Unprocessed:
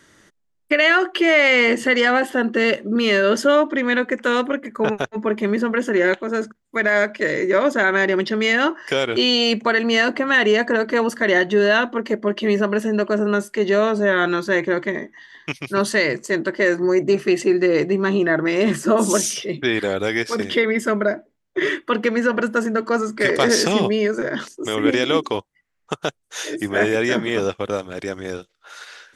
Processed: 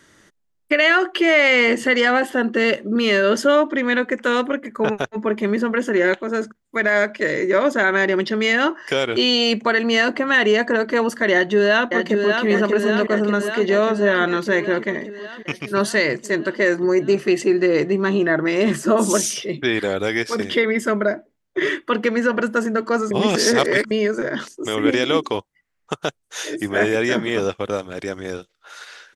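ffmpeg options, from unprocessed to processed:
-filter_complex "[0:a]asplit=2[s0][s1];[s1]afade=t=in:st=11.32:d=0.01,afade=t=out:st=12.47:d=0.01,aecho=0:1:590|1180|1770|2360|2950|3540|4130|4720|5310|5900|6490|7080:0.595662|0.416964|0.291874|0.204312|0.143018|0.100113|0.0700791|0.0490553|0.0343387|0.0240371|0.016826|0.0117782[s2];[s0][s2]amix=inputs=2:normalize=0,asplit=3[s3][s4][s5];[s3]atrim=end=23.112[s6];[s4]atrim=start=23.108:end=23.912,asetpts=PTS-STARTPTS,areverse[s7];[s5]atrim=start=23.908[s8];[s6][s7]acrossfade=d=0.004:c1=hsin:c2=hsin[s9];[s9][s8]acrossfade=d=0.004:c1=hsin:c2=hsin"

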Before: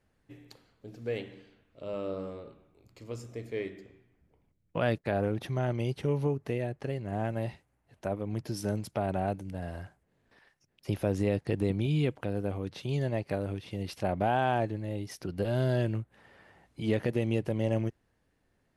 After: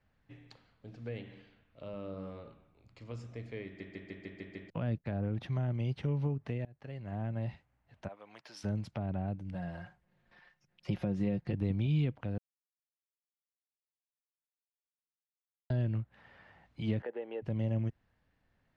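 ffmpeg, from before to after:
-filter_complex "[0:a]asplit=3[s0][s1][s2];[s0]afade=t=out:st=8.07:d=0.02[s3];[s1]highpass=810,afade=t=in:st=8.07:d=0.02,afade=t=out:st=8.63:d=0.02[s4];[s2]afade=t=in:st=8.63:d=0.02[s5];[s3][s4][s5]amix=inputs=3:normalize=0,asettb=1/sr,asplit=3[s6][s7][s8];[s6]atrim=end=9.544[s9];[s7]atrim=start=9.54:end=11.53,asetpts=PTS-STARTPTS,afade=t=in:d=0.004:c=qsin,afade=t=out:st=1.986:d=0.004:c=qsin,aecho=1:1:5.6:0.61,atrim=end_sample=87759[s10];[s8]atrim=start=11.526[s11];[s9][s10]acrossfade=d=0.004:c1=hsin:c2=qsin[s12];[s12][s11]acrossfade=d=0.004:c1=qsin:c2=hsin,asettb=1/sr,asplit=3[s13][s14][s15];[s13]atrim=end=17.024[s16];[s14]atrim=start=17.02:end=17.42,asetpts=PTS-STARTPTS,afade=t=in:d=0.004:c=qsin,afade=t=out:st=0.396:d=0.004:c=qsin,highpass=f=390:w=0.5412,highpass=f=390:w=1.3066,equalizer=f=450:t=q:w=4:g=8,equalizer=f=840:t=q:w=4:g=9,equalizer=f=1600:t=q:w=4:g=8,equalizer=f=2400:t=q:w=4:g=-6,lowpass=f=3000:w=0.5412,lowpass=f=3000:w=1.3066[s17];[s15]atrim=start=17.416[s18];[s16][s17]acrossfade=d=0.004:c1=hsin:c2=qsin[s19];[s19][s18]acrossfade=d=0.004:c1=qsin:c2=hsin,asplit=11[s20][s21][s22][s23][s24][s25][s26][s27][s28][s29][s30];[s20]atrim=end=3.802[s31];[s21]atrim=start=3.648:end=3.802[s32];[s22]atrim=start=3.648:end=3.802[s33];[s23]atrim=start=3.648:end=3.802[s34];[s24]atrim=start=3.648:end=3.802[s35];[s25]atrim=start=3.648:end=3.802[s36];[s26]atrim=start=3.648:end=3.802[s37];[s27]atrim=start=4.698:end=6.65,asetpts=PTS-STARTPTS,afade=t=out:st=1.948:d=0.004:c=hsin:silence=0.0668344[s38];[s28]atrim=start=6.65:end=12.38,asetpts=PTS-STARTPTS,afade=t=in:d=0.67:silence=0.0668344,afade=t=out:st=5.726:d=0.004:c=hsin[s39];[s29]atrim=start=12.38:end=15.7,asetpts=PTS-STARTPTS,volume=0[s40];[s30]atrim=start=15.7,asetpts=PTS-STARTPTS,afade=t=in:d=0.004:c=hsin[s41];[s31][s32]acrossfade=d=0.004:c1=hsin:c2=hsin[s42];[s42][s33]acrossfade=d=0.004:c1=hsin:c2=hsin[s43];[s43][s34]acrossfade=d=0.004:c1=hsin:c2=hsin[s44];[s44][s35]acrossfade=d=0.004:c1=hsin:c2=hsin[s45];[s45][s36]acrossfade=d=0.004:c1=hsin:c2=hsin[s46];[s46][s37]acrossfade=d=0.004:c1=hsin:c2=hsin[s47];[s38][s39][s40][s41]concat=n=4:v=0:a=1[s48];[s47][s48]acrossfade=d=0.004:c1=hsin:c2=hsin,lowpass=4000,equalizer=f=380:t=o:w=0.96:g=-8,acrossover=split=390[s49][s50];[s50]acompressor=threshold=0.00562:ratio=6[s51];[s49][s51]amix=inputs=2:normalize=0"

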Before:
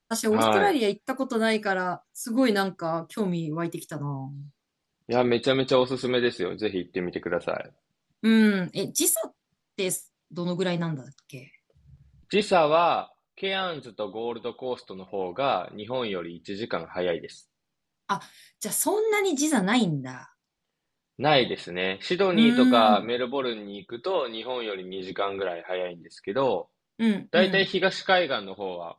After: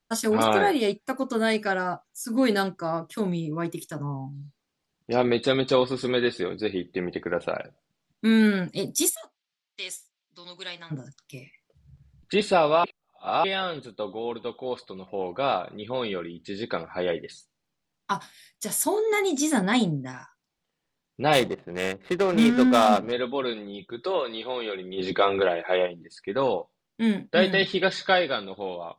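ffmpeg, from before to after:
-filter_complex "[0:a]asplit=3[s0][s1][s2];[s0]afade=t=out:st=9.09:d=0.02[s3];[s1]bandpass=f=3500:t=q:w=0.93,afade=t=in:st=9.09:d=0.02,afade=t=out:st=10.9:d=0.02[s4];[s2]afade=t=in:st=10.9:d=0.02[s5];[s3][s4][s5]amix=inputs=3:normalize=0,asplit=3[s6][s7][s8];[s6]afade=t=out:st=21.32:d=0.02[s9];[s7]adynamicsmooth=sensitivity=2.5:basefreq=520,afade=t=in:st=21.32:d=0.02,afade=t=out:st=23.11:d=0.02[s10];[s8]afade=t=in:st=23.11:d=0.02[s11];[s9][s10][s11]amix=inputs=3:normalize=0,asplit=3[s12][s13][s14];[s12]afade=t=out:st=24.97:d=0.02[s15];[s13]acontrast=69,afade=t=in:st=24.97:d=0.02,afade=t=out:st=25.85:d=0.02[s16];[s14]afade=t=in:st=25.85:d=0.02[s17];[s15][s16][s17]amix=inputs=3:normalize=0,asplit=3[s18][s19][s20];[s18]atrim=end=12.842[s21];[s19]atrim=start=12.838:end=13.442,asetpts=PTS-STARTPTS,areverse[s22];[s20]atrim=start=13.438[s23];[s21][s22]acrossfade=d=0.004:c1=hsin:c2=hsin[s24];[s24][s23]acrossfade=d=0.004:c1=hsin:c2=hsin"

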